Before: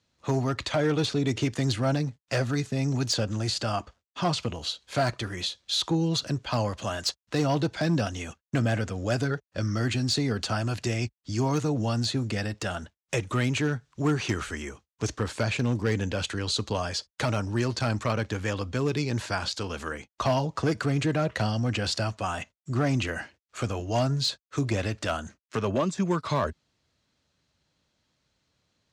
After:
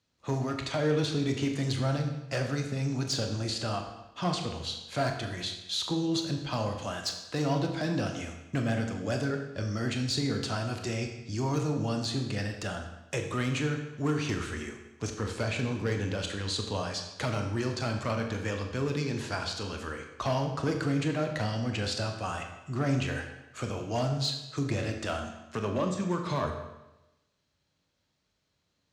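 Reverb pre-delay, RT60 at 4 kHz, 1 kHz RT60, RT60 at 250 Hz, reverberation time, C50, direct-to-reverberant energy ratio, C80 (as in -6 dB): 22 ms, 0.90 s, 1.0 s, 1.0 s, 1.0 s, 6.5 dB, 3.5 dB, 8.0 dB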